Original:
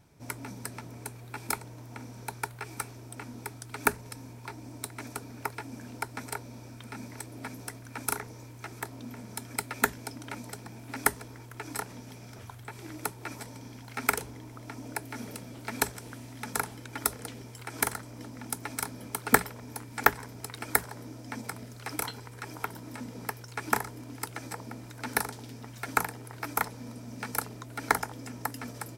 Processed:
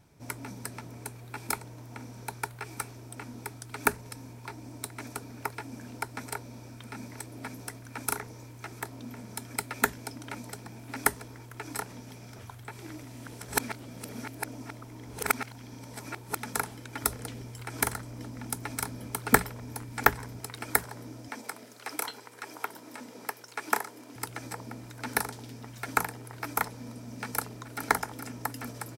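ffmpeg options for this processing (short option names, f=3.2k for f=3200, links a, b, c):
-filter_complex "[0:a]asettb=1/sr,asplit=3[a][b][c];[a]atrim=end=17.024[d];[b]atrim=start=17.02:end=20.39,asetpts=PTS-STARTPTS,afade=t=in:d=0.004:c=qsin,afade=t=out:st=3.366:d=0.004:c=qsin,lowshelf=f=120:g=8.5[e];[c]atrim=start=20.386[f];[d][e]acrossfade=d=0.004:c1=hsin:c2=qsin[g];[g][f]acrossfade=d=0.004:c1=qsin:c2=hsin,asettb=1/sr,asplit=3[h][i][j];[h]atrim=end=21.284[k];[i]atrim=start=21.28:end=24.16,asetpts=PTS-STARTPTS,afade=t=in:d=0.004:c=qsin,afade=t=out:st=2.876:d=0.004:c=qsin,highpass=320[l];[j]atrim=start=24.156[m];[k][l]acrossfade=d=0.004:c1=hsin:c2=qsin[n];[n][m]acrossfade=d=0.004:c1=qsin:c2=hsin,asplit=2[o][p];[p]afade=t=in:st=27.23:d=0.01,afade=t=out:st=27.88:d=0.01,aecho=0:1:420|840|1260|1680|2100|2520|2940|3360|3780|4200:0.281838|0.197287|0.138101|0.0966705|0.0676694|0.0473686|0.033158|0.0232106|0.0162474|0.0113732[q];[o][q]amix=inputs=2:normalize=0,asplit=3[r][s][t];[r]atrim=end=13.032[u];[s]atrim=start=13.028:end=16.372,asetpts=PTS-STARTPTS,areverse[v];[t]atrim=start=16.368[w];[u][v]acrossfade=d=0.004:c1=hsin:c2=hsin[x];[x][w]acrossfade=d=0.004:c1=hsin:c2=hsin"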